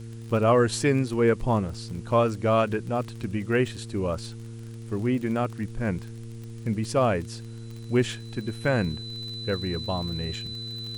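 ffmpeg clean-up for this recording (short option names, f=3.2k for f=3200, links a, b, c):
-af "adeclick=t=4,bandreject=f=114.4:t=h:w=4,bandreject=f=228.8:t=h:w=4,bandreject=f=343.2:t=h:w=4,bandreject=f=457.6:t=h:w=4,bandreject=f=4k:w=30,agate=range=-21dB:threshold=-31dB"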